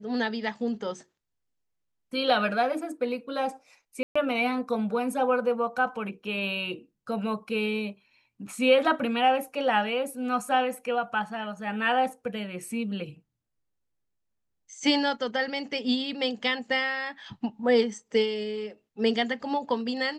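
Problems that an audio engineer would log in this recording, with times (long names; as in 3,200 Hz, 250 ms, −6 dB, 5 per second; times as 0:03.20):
0:04.03–0:04.16: drop-out 125 ms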